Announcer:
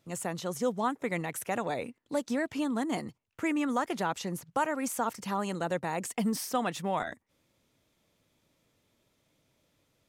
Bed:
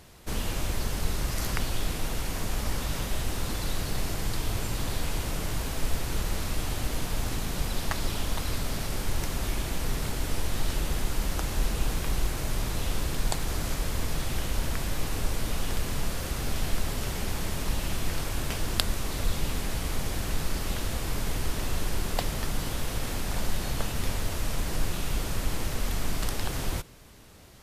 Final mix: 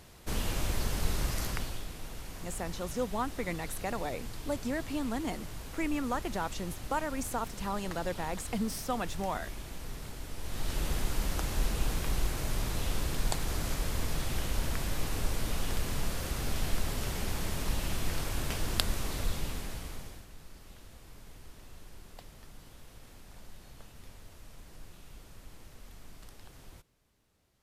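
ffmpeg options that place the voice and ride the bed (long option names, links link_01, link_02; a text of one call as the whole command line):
ffmpeg -i stem1.wav -i stem2.wav -filter_complex "[0:a]adelay=2350,volume=-3.5dB[link_01];[1:a]volume=7dB,afade=type=out:start_time=1.25:duration=0.61:silence=0.316228,afade=type=in:start_time=10.37:duration=0.49:silence=0.354813,afade=type=out:start_time=19.04:duration=1.23:silence=0.11885[link_02];[link_01][link_02]amix=inputs=2:normalize=0" out.wav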